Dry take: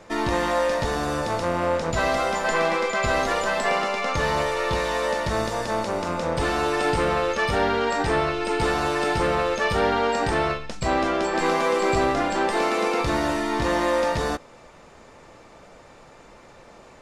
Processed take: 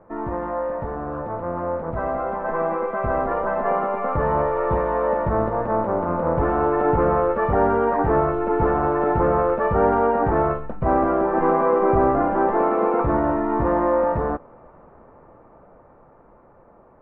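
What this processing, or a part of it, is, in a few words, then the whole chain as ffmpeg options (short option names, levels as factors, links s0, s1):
action camera in a waterproof case: -af "lowpass=f=1300:w=0.5412,lowpass=f=1300:w=1.3066,dynaudnorm=f=900:g=7:m=2.51,volume=0.708" -ar 48000 -c:a aac -b:a 48k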